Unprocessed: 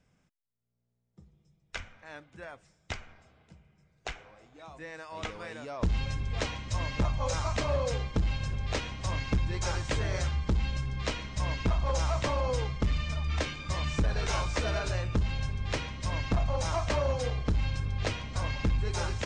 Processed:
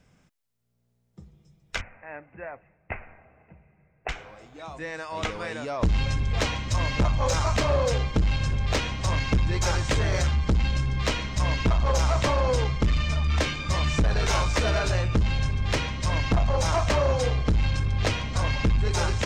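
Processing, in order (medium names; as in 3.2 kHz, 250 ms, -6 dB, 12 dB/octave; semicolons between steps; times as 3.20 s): saturation -25 dBFS, distortion -17 dB; 1.81–4.09 s: rippled Chebyshev low-pass 2.7 kHz, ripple 6 dB; trim +8.5 dB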